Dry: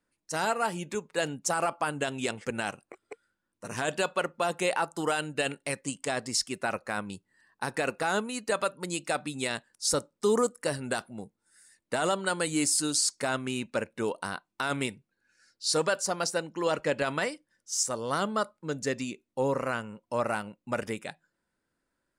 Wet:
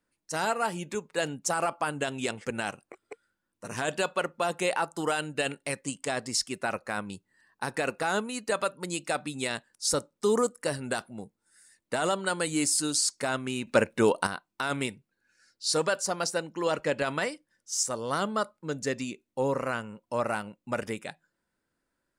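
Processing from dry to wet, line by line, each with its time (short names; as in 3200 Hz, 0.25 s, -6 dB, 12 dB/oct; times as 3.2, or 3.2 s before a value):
13.67–14.27 gain +8 dB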